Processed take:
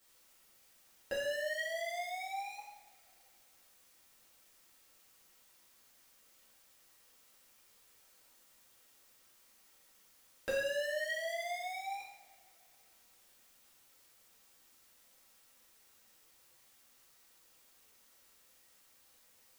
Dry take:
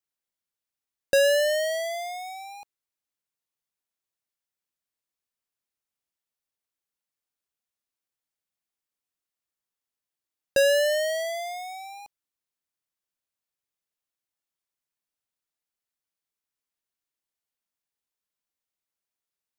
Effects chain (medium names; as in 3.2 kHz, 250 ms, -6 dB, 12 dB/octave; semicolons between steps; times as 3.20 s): Doppler pass-by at 7.59 s, 6 m/s, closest 7.1 m; peaking EQ 1.6 kHz +9 dB 1.8 oct; compression 6:1, threshold -41 dBFS, peak gain reduction 18 dB; added noise white -72 dBFS; two-slope reverb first 0.71 s, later 2.9 s, from -25 dB, DRR -8.5 dB; trim -3 dB